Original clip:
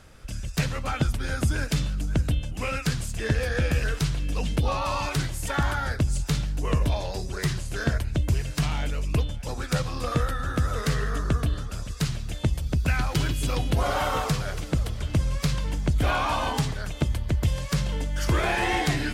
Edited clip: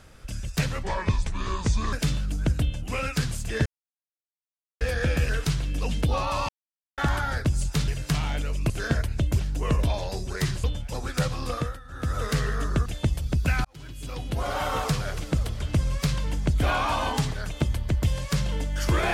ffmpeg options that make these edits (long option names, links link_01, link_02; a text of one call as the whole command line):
ffmpeg -i in.wav -filter_complex "[0:a]asplit=14[link_01][link_02][link_03][link_04][link_05][link_06][link_07][link_08][link_09][link_10][link_11][link_12][link_13][link_14];[link_01]atrim=end=0.834[link_15];[link_02]atrim=start=0.83:end=1.62,asetpts=PTS-STARTPTS,asetrate=31752,aresample=44100[link_16];[link_03]atrim=start=1.616:end=3.35,asetpts=PTS-STARTPTS,afade=type=out:start_time=1.73:duration=0.004:curve=hsin,apad=pad_dur=1.15[link_17];[link_04]atrim=start=3.35:end=5.03,asetpts=PTS-STARTPTS,afade=type=in:duration=0.004:curve=hsin,afade=type=out:start_time=1.676:duration=0.004:curve=hsin[link_18];[link_05]atrim=start=5.03:end=5.52,asetpts=PTS-STARTPTS,volume=0[link_19];[link_06]atrim=start=5.52:end=6.422,asetpts=PTS-STARTPTS,afade=type=in:duration=0.004:curve=hsin[link_20];[link_07]atrim=start=8.358:end=9.182[link_21];[link_08]atrim=start=7.658:end=8.362[link_22];[link_09]atrim=start=6.418:end=7.662[link_23];[link_10]atrim=start=9.178:end=10.34,asetpts=PTS-STARTPTS,afade=type=out:start_time=0.842:duration=0.32:silence=0.158489[link_24];[link_11]atrim=start=10.34:end=10.42,asetpts=PTS-STARTPTS,volume=-16dB[link_25];[link_12]atrim=start=10.42:end=11.402,asetpts=PTS-STARTPTS,afade=type=in:duration=0.32:silence=0.158489[link_26];[link_13]atrim=start=12.258:end=13.05,asetpts=PTS-STARTPTS,afade=type=out:start_time=0.788:duration=0.004:curve=hsin[link_27];[link_14]atrim=start=13.05,asetpts=PTS-STARTPTS,afade=type=in:duration=1.27[link_28];[link_15][link_16]acrossfade=duration=0.004:curve1=hsin:curve2=hsin[link_29];[link_17][link_18][link_19][link_20]concat=n=4:v=0:a=1[link_30];[link_29][link_30]acrossfade=duration=0.004:curve1=hsin:curve2=hsin[link_31];[link_31][link_21]acrossfade=duration=0.004:curve1=hsin:curve2=hsin[link_32];[link_32][link_22]acrossfade=duration=0.004:curve1=hsin:curve2=hsin[link_33];[link_33][link_23]acrossfade=duration=0.004:curve1=hsin:curve2=hsin[link_34];[link_24][link_25][link_26]concat=n=3:v=0:a=1[link_35];[link_34][link_35]acrossfade=duration=0.004:curve1=hsin:curve2=hsin[link_36];[link_27][link_28]concat=n=2:v=0:a=1[link_37];[link_36][link_37]acrossfade=duration=0.004:curve1=hsin:curve2=hsin" out.wav